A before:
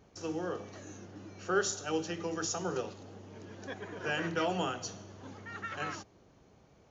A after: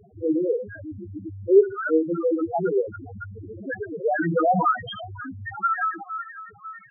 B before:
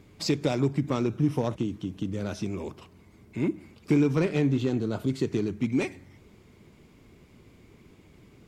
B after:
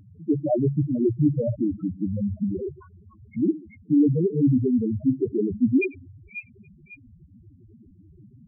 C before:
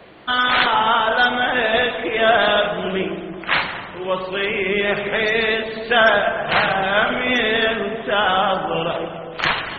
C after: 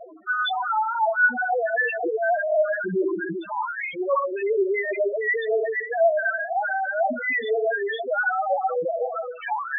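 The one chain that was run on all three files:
delay with a high-pass on its return 275 ms, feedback 64%, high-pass 1,700 Hz, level −5 dB
auto-filter low-pass saw up 2 Hz 720–4,200 Hz
reversed playback
downward compressor 6 to 1, threshold −22 dBFS
reversed playback
high-shelf EQ 4,400 Hz −11.5 dB
spectral peaks only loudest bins 2
loudness normalisation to −24 LKFS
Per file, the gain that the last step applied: +17.5, +10.5, +8.5 decibels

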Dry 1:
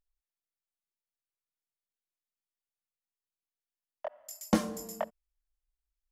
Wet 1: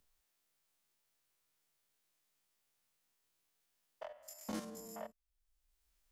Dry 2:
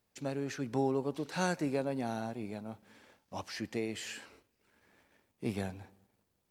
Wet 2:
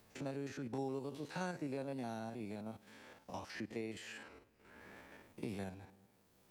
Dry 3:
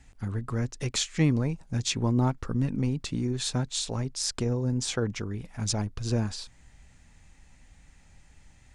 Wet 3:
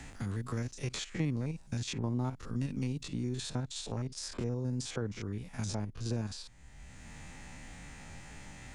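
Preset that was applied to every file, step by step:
spectrum averaged block by block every 50 ms
multiband upward and downward compressor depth 70%
level −6.5 dB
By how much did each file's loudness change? −12.5, −8.0, −8.0 LU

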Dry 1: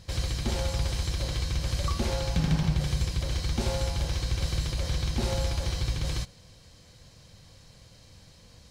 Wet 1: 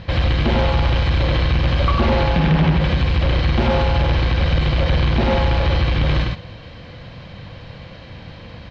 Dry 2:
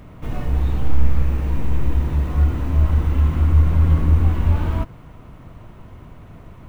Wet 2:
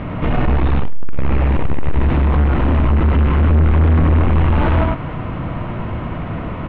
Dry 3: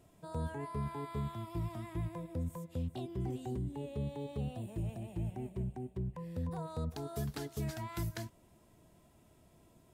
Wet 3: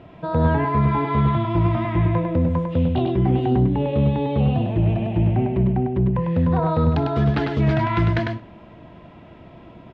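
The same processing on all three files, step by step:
dynamic equaliser 120 Hz, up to −4 dB, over −29 dBFS, Q 0.98
in parallel at −1 dB: downward compressor, threshold −26 dBFS
on the sum: low-shelf EQ 76 Hz −8 dB
notch filter 410 Hz, Q 12
on a send: single-tap delay 100 ms −4.5 dB
on the sum: soft clipping −23.5 dBFS
low-pass filter 3,100 Hz 24 dB per octave
repeating echo 63 ms, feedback 46%, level −20.5 dB
normalise the peak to −9 dBFS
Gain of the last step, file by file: +13.0, +13.0, +15.5 decibels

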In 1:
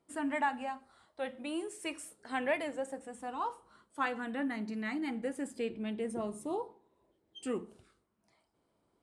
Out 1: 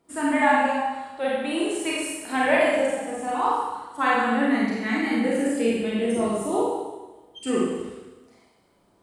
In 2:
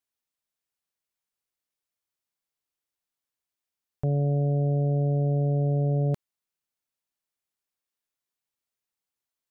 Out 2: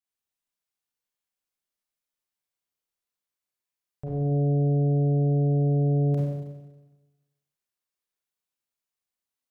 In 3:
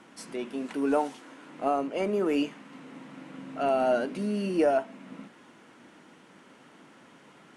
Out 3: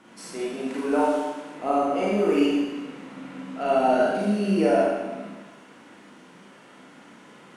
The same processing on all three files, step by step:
four-comb reverb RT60 1.2 s, combs from 31 ms, DRR −6 dB
loudness normalisation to −24 LKFS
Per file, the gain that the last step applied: +7.0, −8.0, −1.5 decibels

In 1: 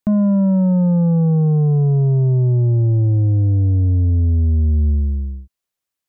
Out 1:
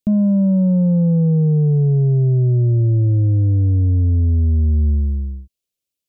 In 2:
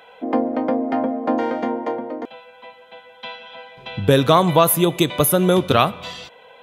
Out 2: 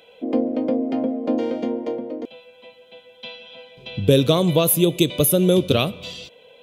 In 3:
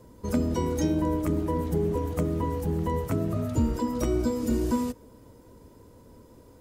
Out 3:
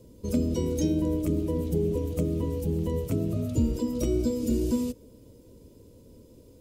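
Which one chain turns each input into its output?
flat-topped bell 1,200 Hz −13 dB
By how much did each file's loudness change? 0.0, −1.5, −0.5 LU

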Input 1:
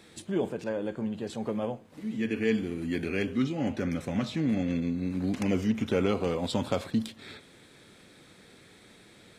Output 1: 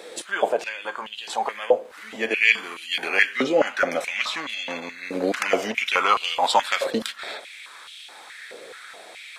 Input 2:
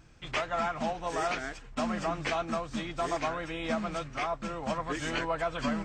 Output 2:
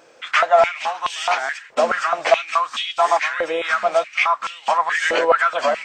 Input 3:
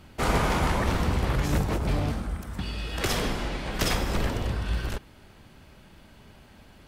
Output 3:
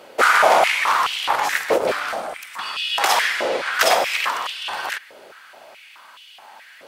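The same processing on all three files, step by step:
high-pass on a step sequencer 4.7 Hz 510–3,000 Hz
normalise the peak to −2 dBFS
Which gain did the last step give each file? +11.0, +10.0, +8.5 decibels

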